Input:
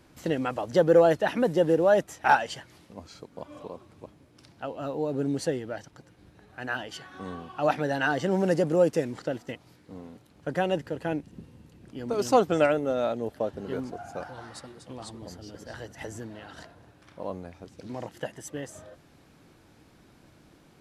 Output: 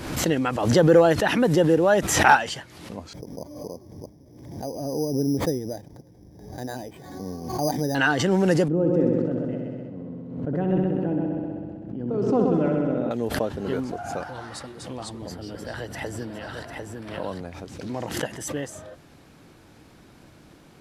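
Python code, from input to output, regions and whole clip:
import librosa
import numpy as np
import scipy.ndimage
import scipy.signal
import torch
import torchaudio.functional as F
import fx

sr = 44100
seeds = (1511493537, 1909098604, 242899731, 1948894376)

y = fx.chain(x, sr, fx.moving_average(points=33),
    fx.resample_bad(factor=8, down='none', up='hold'), at=(3.13, 7.95))
y = fx.chain(y, sr, fx.bandpass_q(hz=200.0, q=0.93),
    fx.echo_heads(ms=64, heads='first and second', feedback_pct=70, wet_db=-7.5),
    fx.sustainer(db_per_s=24.0), at=(8.68, 13.11))
y = fx.chain(y, sr, fx.peak_eq(hz=6500.0, db=-11.0, octaves=0.24),
    fx.echo_single(ms=749, db=-5.5),
    fx.band_squash(depth_pct=40), at=(15.31, 17.41))
y = fx.dynamic_eq(y, sr, hz=610.0, q=1.9, threshold_db=-36.0, ratio=4.0, max_db=-5)
y = fx.pre_swell(y, sr, db_per_s=56.0)
y = y * 10.0 ** (5.5 / 20.0)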